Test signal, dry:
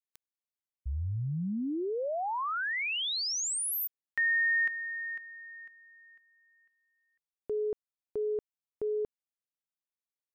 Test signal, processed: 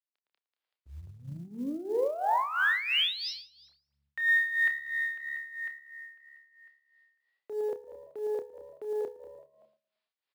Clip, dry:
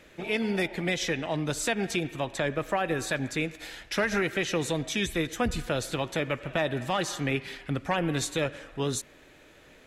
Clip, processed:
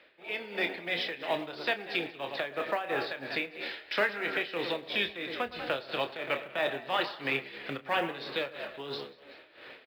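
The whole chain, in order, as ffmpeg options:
ffmpeg -i in.wav -filter_complex "[0:a]aeval=exprs='0.158*(cos(1*acos(clip(val(0)/0.158,-1,1)))-cos(1*PI/2))+0.00398*(cos(2*acos(clip(val(0)/0.158,-1,1)))-cos(2*PI/2))+0.00398*(cos(8*acos(clip(val(0)/0.158,-1,1)))-cos(8*PI/2))':channel_layout=same,highshelf=frequency=3700:gain=11.5,asplit=2[link_01][link_02];[link_02]asplit=3[link_03][link_04][link_05];[link_03]adelay=190,afreqshift=71,volume=-13.5dB[link_06];[link_04]adelay=380,afreqshift=142,volume=-23.4dB[link_07];[link_05]adelay=570,afreqshift=213,volume=-33.3dB[link_08];[link_06][link_07][link_08]amix=inputs=3:normalize=0[link_09];[link_01][link_09]amix=inputs=2:normalize=0,acompressor=threshold=-35dB:ratio=2.5:attack=0.12:release=794:knee=6:detection=rms,asplit=2[link_10][link_11];[link_11]adelay=112,lowpass=frequency=1500:poles=1,volume=-10dB,asplit=2[link_12][link_13];[link_13]adelay=112,lowpass=frequency=1500:poles=1,volume=0.38,asplit=2[link_14][link_15];[link_15]adelay=112,lowpass=frequency=1500:poles=1,volume=0.38,asplit=2[link_16][link_17];[link_17]adelay=112,lowpass=frequency=1500:poles=1,volume=0.38[link_18];[link_12][link_14][link_16][link_18]amix=inputs=4:normalize=0[link_19];[link_10][link_19]amix=inputs=2:normalize=0,dynaudnorm=framelen=110:gausssize=7:maxgain=16dB,acrossover=split=340 3900:gain=0.158 1 0.158[link_20][link_21][link_22];[link_20][link_21][link_22]amix=inputs=3:normalize=0,asplit=2[link_23][link_24];[link_24]adelay=29,volume=-8.5dB[link_25];[link_23][link_25]amix=inputs=2:normalize=0,aresample=11025,aresample=44100,acrusher=bits=8:mode=log:mix=0:aa=0.000001,tremolo=f=3:d=0.74,highpass=72,volume=-4.5dB" out.wav

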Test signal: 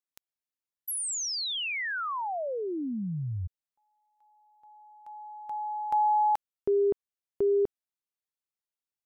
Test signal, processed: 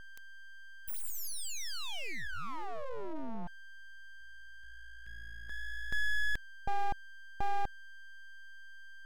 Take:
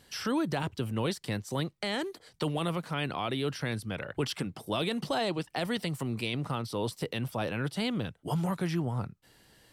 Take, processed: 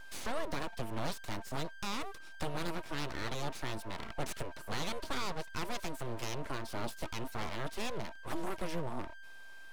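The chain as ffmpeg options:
ffmpeg -i in.wav -af "aeval=exprs='val(0)+0.00891*sin(2*PI*790*n/s)':channel_layout=same,aeval=exprs='abs(val(0))':channel_layout=same,volume=-3.5dB" out.wav

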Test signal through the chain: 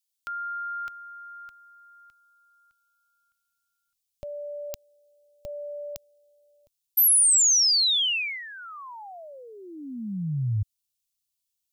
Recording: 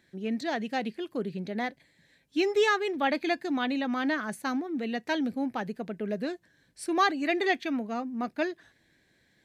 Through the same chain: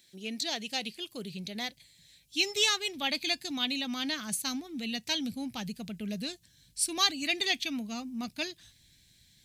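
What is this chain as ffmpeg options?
ffmpeg -i in.wav -af "asubboost=boost=10:cutoff=130,aexciter=amount=7.2:drive=5.5:freq=2500,volume=-7.5dB" out.wav

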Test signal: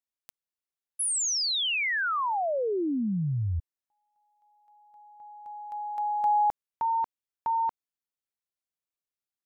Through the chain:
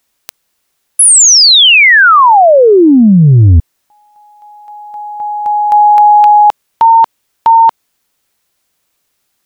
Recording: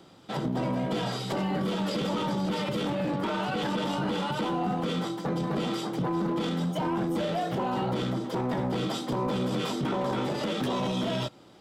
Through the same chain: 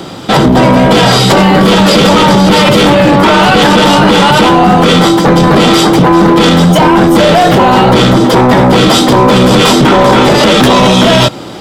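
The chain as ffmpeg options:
ffmpeg -i in.wav -af "apsyclip=31dB,volume=-1.5dB" out.wav

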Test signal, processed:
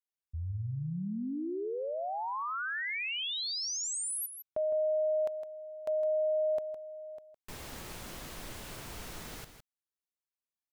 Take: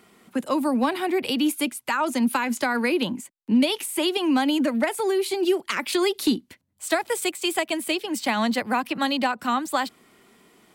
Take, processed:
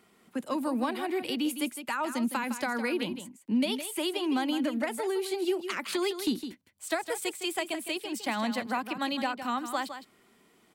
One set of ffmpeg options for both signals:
ffmpeg -i in.wav -af "aecho=1:1:160:0.316,volume=-7.5dB" out.wav

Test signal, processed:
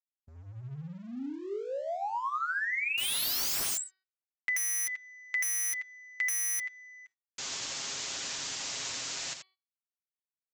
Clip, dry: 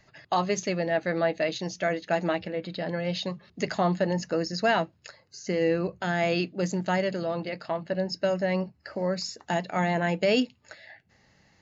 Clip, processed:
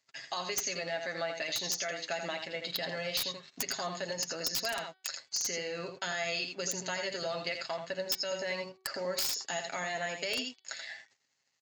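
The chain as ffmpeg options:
ffmpeg -i in.wav -filter_complex "[0:a]alimiter=level_in=1dB:limit=-24dB:level=0:latency=1:release=344,volume=-1dB,asplit=2[link_01][link_02];[link_02]aecho=0:1:83:0.447[link_03];[link_01][link_03]amix=inputs=2:normalize=0,crystalizer=i=9:c=0,aresample=16000,aeval=exprs='sgn(val(0))*max(abs(val(0))-0.00251,0)':channel_layout=same,aresample=44100,highpass=frequency=260:poles=1,aeval=exprs='(mod(5.96*val(0)+1,2)-1)/5.96':channel_layout=same,acompressor=threshold=-26dB:ratio=10,aecho=1:1:7.4:0.48,bandreject=frequency=377.7:width_type=h:width=4,bandreject=frequency=755.4:width_type=h:width=4,bandreject=frequency=1133.1:width_type=h:width=4,bandreject=frequency=1510.8:width_type=h:width=4,bandreject=frequency=1888.5:width_type=h:width=4,bandreject=frequency=2266.2:width_type=h:width=4,bandreject=frequency=2643.9:width_type=h:width=4,bandreject=frequency=3021.6:width_type=h:width=4,bandreject=frequency=3399.3:width_type=h:width=4,bandreject=frequency=3777:width_type=h:width=4,bandreject=frequency=4154.7:width_type=h:width=4,bandreject=frequency=4532.4:width_type=h:width=4,bandreject=frequency=4910.1:width_type=h:width=4,agate=range=-15dB:threshold=-56dB:ratio=16:detection=peak,volume=-4dB" out.wav

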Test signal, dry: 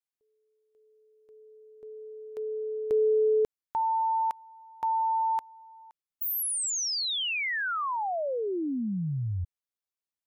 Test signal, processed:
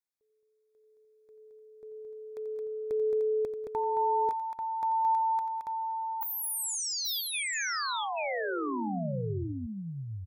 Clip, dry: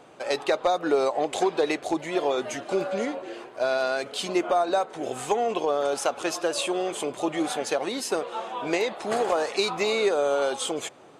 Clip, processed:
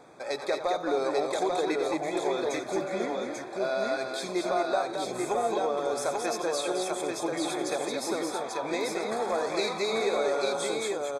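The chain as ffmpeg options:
ffmpeg -i in.wav -filter_complex "[0:a]asplit=2[link_01][link_02];[link_02]acompressor=threshold=-39dB:ratio=6:attack=5.7:release=32,volume=-2dB[link_03];[link_01][link_03]amix=inputs=2:normalize=0,asuperstop=centerf=2900:order=20:qfactor=4.5,aecho=1:1:88|193|220|840|876:0.251|0.1|0.596|0.708|0.106,volume=-7dB" out.wav

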